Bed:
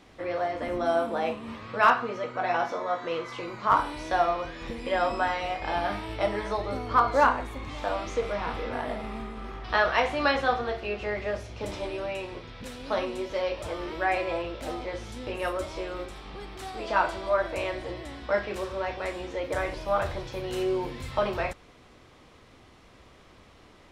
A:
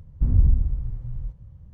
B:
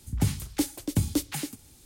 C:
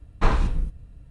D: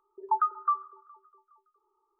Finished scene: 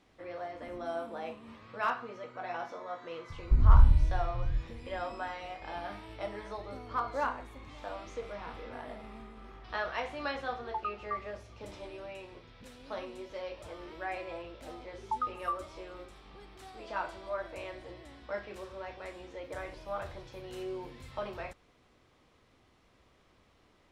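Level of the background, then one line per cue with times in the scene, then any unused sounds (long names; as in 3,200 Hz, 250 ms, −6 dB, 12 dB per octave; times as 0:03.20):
bed −11.5 dB
0:03.30: mix in A −5.5 dB + phase shifter 1.6 Hz
0:10.43: mix in D −10.5 dB
0:14.80: mix in D −7.5 dB
not used: B, C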